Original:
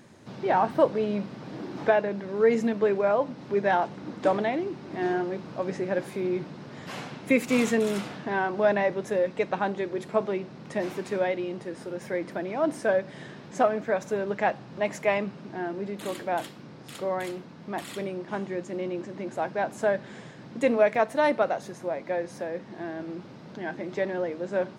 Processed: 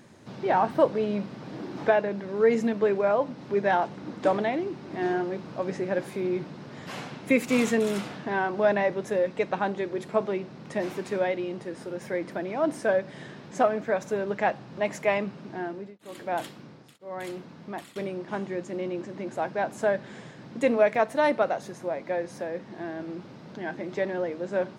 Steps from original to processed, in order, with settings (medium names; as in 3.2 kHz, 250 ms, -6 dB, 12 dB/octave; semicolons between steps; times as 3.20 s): 15.49–17.96 s: tremolo of two beating tones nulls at 1 Hz